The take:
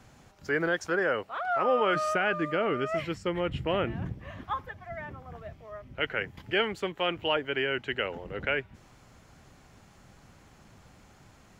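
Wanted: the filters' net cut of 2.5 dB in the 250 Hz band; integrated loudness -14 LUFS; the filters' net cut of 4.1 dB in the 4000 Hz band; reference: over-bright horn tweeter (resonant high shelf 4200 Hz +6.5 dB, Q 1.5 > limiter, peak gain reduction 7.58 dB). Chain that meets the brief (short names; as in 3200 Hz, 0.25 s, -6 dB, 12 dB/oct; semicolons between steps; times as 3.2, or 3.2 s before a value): bell 250 Hz -4 dB; bell 4000 Hz -4.5 dB; resonant high shelf 4200 Hz +6.5 dB, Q 1.5; gain +20.5 dB; limiter -3 dBFS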